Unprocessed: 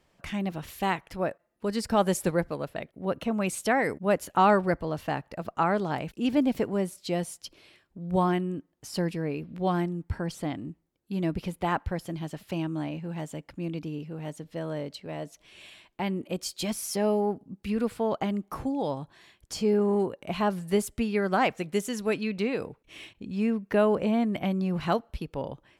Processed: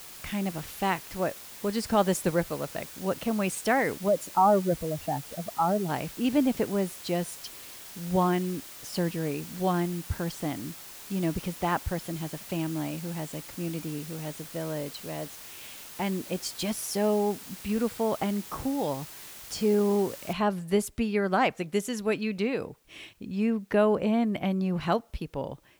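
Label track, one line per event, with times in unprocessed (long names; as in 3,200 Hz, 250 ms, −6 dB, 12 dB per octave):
4.080000	5.890000	expanding power law on the bin magnitudes exponent 2.3
20.330000	20.330000	noise floor change −45 dB −69 dB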